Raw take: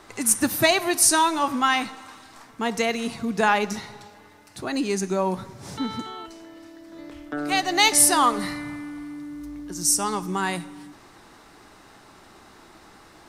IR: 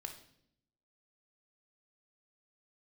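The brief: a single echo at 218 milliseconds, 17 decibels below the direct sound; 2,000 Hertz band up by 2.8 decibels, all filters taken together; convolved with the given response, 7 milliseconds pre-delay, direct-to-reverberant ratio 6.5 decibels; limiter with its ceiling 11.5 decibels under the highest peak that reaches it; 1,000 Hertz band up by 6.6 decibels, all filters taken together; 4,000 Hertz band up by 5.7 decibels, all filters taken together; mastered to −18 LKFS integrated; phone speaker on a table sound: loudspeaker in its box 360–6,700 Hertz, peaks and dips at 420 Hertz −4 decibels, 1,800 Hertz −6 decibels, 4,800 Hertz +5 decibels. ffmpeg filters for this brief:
-filter_complex "[0:a]equalizer=frequency=1000:width_type=o:gain=7.5,equalizer=frequency=2000:width_type=o:gain=3.5,equalizer=frequency=4000:width_type=o:gain=4,alimiter=limit=-11dB:level=0:latency=1,aecho=1:1:218:0.141,asplit=2[link_01][link_02];[1:a]atrim=start_sample=2205,adelay=7[link_03];[link_02][link_03]afir=irnorm=-1:irlink=0,volume=-3.5dB[link_04];[link_01][link_04]amix=inputs=2:normalize=0,highpass=frequency=360:width=0.5412,highpass=frequency=360:width=1.3066,equalizer=frequency=420:width_type=q:width=4:gain=-4,equalizer=frequency=1800:width_type=q:width=4:gain=-6,equalizer=frequency=4800:width_type=q:width=4:gain=5,lowpass=frequency=6700:width=0.5412,lowpass=frequency=6700:width=1.3066,volume=5.5dB"

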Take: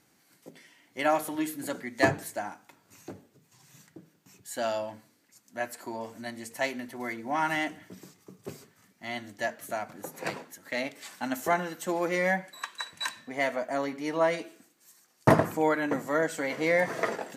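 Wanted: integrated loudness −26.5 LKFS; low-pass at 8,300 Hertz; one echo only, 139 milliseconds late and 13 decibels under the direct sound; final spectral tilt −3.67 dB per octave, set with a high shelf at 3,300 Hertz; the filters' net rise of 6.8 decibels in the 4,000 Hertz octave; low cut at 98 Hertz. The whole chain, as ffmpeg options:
ffmpeg -i in.wav -af "highpass=98,lowpass=8300,highshelf=frequency=3300:gain=7,equalizer=frequency=4000:width_type=o:gain=3.5,aecho=1:1:139:0.224,volume=2.5dB" out.wav

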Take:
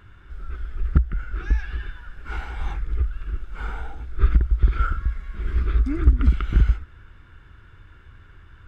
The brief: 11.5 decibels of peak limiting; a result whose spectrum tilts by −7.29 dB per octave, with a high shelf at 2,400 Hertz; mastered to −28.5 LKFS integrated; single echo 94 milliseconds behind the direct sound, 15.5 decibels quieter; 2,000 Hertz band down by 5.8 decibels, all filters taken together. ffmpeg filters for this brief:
ffmpeg -i in.wav -af "equalizer=frequency=2000:width_type=o:gain=-6,highshelf=frequency=2400:gain=-6,alimiter=limit=-15.5dB:level=0:latency=1,aecho=1:1:94:0.168,volume=1dB" out.wav

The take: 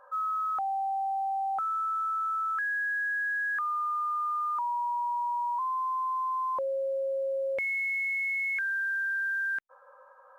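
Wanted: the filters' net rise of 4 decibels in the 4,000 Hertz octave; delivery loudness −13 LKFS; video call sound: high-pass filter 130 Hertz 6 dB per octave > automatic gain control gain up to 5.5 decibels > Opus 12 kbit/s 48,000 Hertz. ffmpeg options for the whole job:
ffmpeg -i in.wav -af "highpass=frequency=130:poles=1,equalizer=frequency=4000:width_type=o:gain=5,dynaudnorm=maxgain=5.5dB,volume=16.5dB" -ar 48000 -c:a libopus -b:a 12k out.opus

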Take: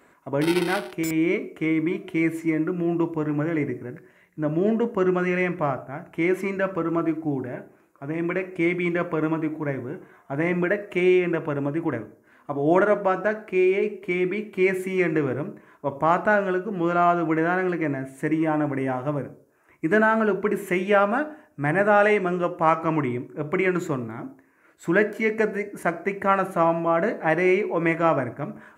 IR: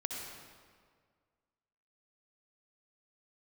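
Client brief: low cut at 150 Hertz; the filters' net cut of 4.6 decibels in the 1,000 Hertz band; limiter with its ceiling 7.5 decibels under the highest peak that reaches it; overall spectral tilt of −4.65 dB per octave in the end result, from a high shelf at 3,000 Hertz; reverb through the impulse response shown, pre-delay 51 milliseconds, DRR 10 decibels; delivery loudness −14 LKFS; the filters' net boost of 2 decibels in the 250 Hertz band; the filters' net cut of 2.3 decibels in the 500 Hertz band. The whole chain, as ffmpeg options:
-filter_complex "[0:a]highpass=150,equalizer=frequency=250:width_type=o:gain=7,equalizer=frequency=500:width_type=o:gain=-5.5,equalizer=frequency=1000:width_type=o:gain=-3.5,highshelf=frequency=3000:gain=-9,alimiter=limit=-15.5dB:level=0:latency=1,asplit=2[link_01][link_02];[1:a]atrim=start_sample=2205,adelay=51[link_03];[link_02][link_03]afir=irnorm=-1:irlink=0,volume=-11.5dB[link_04];[link_01][link_04]amix=inputs=2:normalize=0,volume=12dB"

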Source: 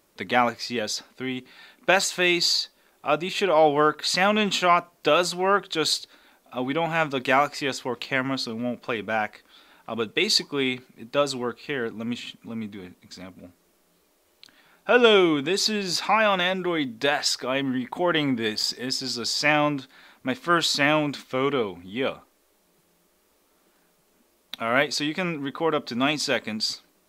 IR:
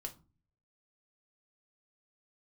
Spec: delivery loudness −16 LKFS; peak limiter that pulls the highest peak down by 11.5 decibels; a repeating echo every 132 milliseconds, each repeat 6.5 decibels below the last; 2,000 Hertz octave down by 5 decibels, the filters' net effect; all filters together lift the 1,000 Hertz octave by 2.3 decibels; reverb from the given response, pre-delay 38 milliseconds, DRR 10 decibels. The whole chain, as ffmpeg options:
-filter_complex "[0:a]equalizer=frequency=1000:width_type=o:gain=5.5,equalizer=frequency=2000:width_type=o:gain=-9,alimiter=limit=-15dB:level=0:latency=1,aecho=1:1:132|264|396|528|660|792:0.473|0.222|0.105|0.0491|0.0231|0.0109,asplit=2[link_01][link_02];[1:a]atrim=start_sample=2205,adelay=38[link_03];[link_02][link_03]afir=irnorm=-1:irlink=0,volume=-7dB[link_04];[link_01][link_04]amix=inputs=2:normalize=0,volume=10dB"

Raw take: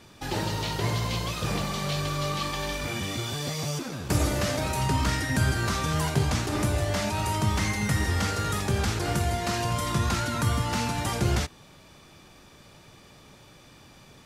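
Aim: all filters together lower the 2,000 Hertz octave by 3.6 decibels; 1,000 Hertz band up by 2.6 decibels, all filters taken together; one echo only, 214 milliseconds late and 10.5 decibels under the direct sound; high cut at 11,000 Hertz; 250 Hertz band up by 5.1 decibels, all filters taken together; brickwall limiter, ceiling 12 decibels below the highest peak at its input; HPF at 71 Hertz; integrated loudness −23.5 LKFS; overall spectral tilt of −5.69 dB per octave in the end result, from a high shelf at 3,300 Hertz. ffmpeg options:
ffmpeg -i in.wav -af "highpass=71,lowpass=11000,equalizer=frequency=250:width_type=o:gain=7,equalizer=frequency=1000:width_type=o:gain=4.5,equalizer=frequency=2000:width_type=o:gain=-4.5,highshelf=frequency=3300:gain=-6,alimiter=limit=-22dB:level=0:latency=1,aecho=1:1:214:0.299,volume=7dB" out.wav

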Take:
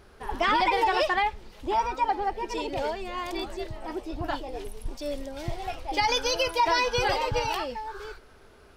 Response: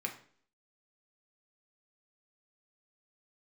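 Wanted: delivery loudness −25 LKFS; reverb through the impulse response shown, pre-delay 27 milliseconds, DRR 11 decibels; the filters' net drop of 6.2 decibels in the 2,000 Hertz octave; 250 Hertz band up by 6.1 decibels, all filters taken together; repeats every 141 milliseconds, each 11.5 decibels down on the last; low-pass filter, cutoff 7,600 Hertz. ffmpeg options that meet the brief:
-filter_complex "[0:a]lowpass=7600,equalizer=frequency=250:width_type=o:gain=9,equalizer=frequency=2000:width_type=o:gain=-8,aecho=1:1:141|282|423:0.266|0.0718|0.0194,asplit=2[link_01][link_02];[1:a]atrim=start_sample=2205,adelay=27[link_03];[link_02][link_03]afir=irnorm=-1:irlink=0,volume=-13dB[link_04];[link_01][link_04]amix=inputs=2:normalize=0,volume=2.5dB"

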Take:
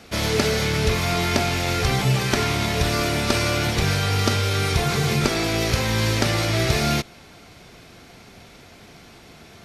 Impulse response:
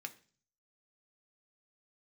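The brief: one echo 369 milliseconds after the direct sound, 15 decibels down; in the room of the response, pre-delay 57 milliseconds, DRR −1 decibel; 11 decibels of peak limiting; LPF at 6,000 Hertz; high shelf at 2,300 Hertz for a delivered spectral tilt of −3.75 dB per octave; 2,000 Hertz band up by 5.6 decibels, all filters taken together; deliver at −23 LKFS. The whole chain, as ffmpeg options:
-filter_complex "[0:a]lowpass=6000,equalizer=frequency=2000:width_type=o:gain=5,highshelf=frequency=2300:gain=3.5,alimiter=limit=-15dB:level=0:latency=1,aecho=1:1:369:0.178,asplit=2[link_01][link_02];[1:a]atrim=start_sample=2205,adelay=57[link_03];[link_02][link_03]afir=irnorm=-1:irlink=0,volume=3dB[link_04];[link_01][link_04]amix=inputs=2:normalize=0,volume=-2.5dB"

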